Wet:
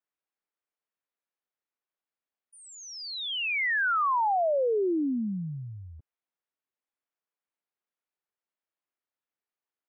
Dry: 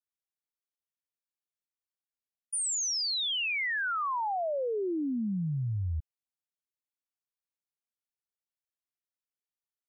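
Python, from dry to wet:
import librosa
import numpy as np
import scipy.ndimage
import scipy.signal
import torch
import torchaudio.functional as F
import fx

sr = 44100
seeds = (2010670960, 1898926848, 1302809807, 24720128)

y = fx.bandpass_edges(x, sr, low_hz=260.0, high_hz=2200.0)
y = y * librosa.db_to_amplitude(6.0)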